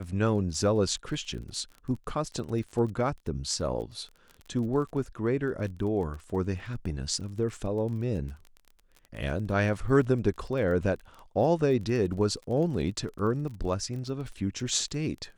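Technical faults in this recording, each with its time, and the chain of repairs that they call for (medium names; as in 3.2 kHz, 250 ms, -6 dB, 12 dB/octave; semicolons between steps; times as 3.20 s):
crackle 25 per s -37 dBFS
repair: de-click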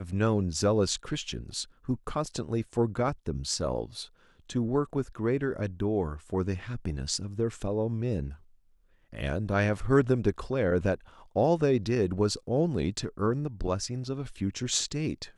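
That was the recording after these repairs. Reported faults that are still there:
nothing left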